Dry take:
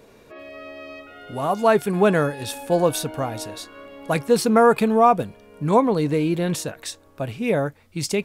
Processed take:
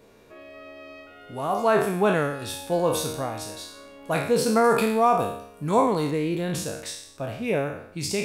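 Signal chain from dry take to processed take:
peak hold with a decay on every bin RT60 0.71 s
0:04.64–0:06.11: high-shelf EQ 4,400 Hz +7.5 dB
level −5.5 dB

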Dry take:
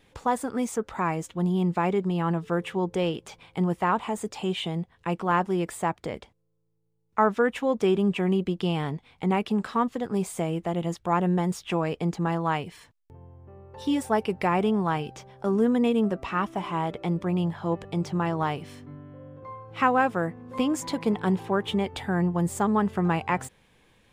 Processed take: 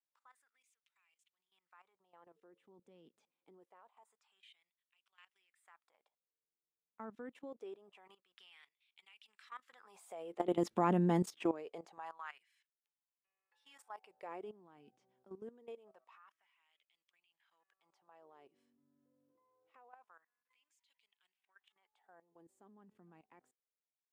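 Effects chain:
source passing by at 0:10.85, 9 m/s, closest 1.6 metres
auto-filter high-pass sine 0.25 Hz 230–2,900 Hz
output level in coarse steps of 16 dB
level +2 dB

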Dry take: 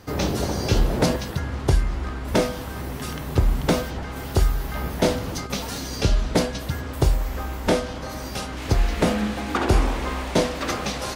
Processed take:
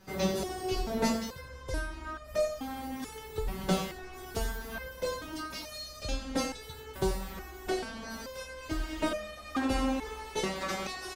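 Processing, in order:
single-tap delay 88 ms −11 dB
step-sequenced resonator 2.3 Hz 190–610 Hz
level +5.5 dB

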